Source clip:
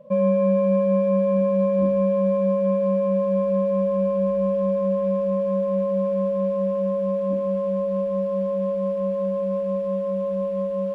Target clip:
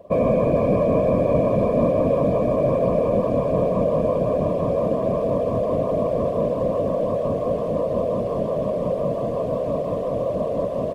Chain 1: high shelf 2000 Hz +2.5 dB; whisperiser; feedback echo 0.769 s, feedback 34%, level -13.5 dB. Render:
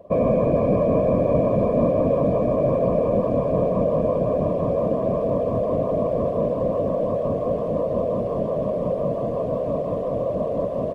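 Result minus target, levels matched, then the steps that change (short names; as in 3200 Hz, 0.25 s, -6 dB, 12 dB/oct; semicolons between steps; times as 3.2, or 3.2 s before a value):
4000 Hz band -5.0 dB
change: high shelf 2000 Hz +10 dB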